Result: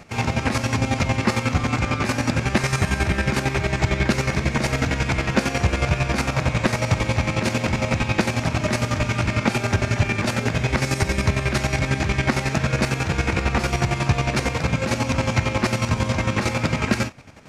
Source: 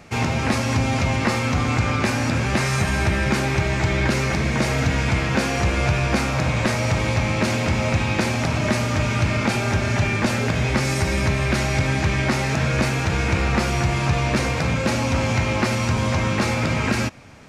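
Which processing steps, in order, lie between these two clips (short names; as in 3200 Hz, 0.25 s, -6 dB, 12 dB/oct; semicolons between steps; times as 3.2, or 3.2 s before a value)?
chopper 11 Hz, depth 60%, duty 35%; gain +2.5 dB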